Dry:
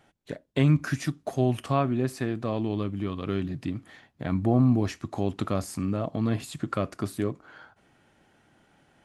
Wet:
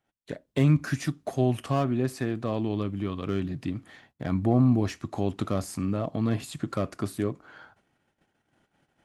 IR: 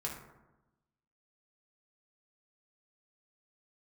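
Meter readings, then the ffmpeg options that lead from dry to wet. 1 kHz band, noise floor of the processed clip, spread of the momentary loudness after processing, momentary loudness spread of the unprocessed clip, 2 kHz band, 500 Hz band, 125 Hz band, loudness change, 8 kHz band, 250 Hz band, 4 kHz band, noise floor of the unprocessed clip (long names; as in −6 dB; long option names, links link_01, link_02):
−1.5 dB, −79 dBFS, 10 LU, 10 LU, −1.5 dB, 0.0 dB, 0.0 dB, 0.0 dB, 0.0 dB, 0.0 dB, −1.0 dB, −66 dBFS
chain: -filter_complex "[0:a]agate=range=-19dB:threshold=-60dB:ratio=16:detection=peak,acrossover=split=770|5600[link_01][link_02][link_03];[link_02]asoftclip=type=hard:threshold=-32dB[link_04];[link_01][link_04][link_03]amix=inputs=3:normalize=0"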